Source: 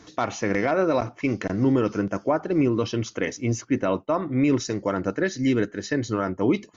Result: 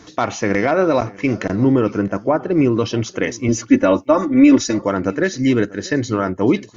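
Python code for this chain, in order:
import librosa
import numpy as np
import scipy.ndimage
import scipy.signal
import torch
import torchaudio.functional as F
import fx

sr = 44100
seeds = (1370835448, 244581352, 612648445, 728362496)

p1 = fx.high_shelf(x, sr, hz=3800.0, db=-9.0, at=(1.55, 2.58))
p2 = fx.comb(p1, sr, ms=3.5, depth=0.98, at=(3.48, 4.79))
p3 = p2 + fx.echo_single(p2, sr, ms=639, db=-22.0, dry=0)
y = p3 * librosa.db_to_amplitude(6.0)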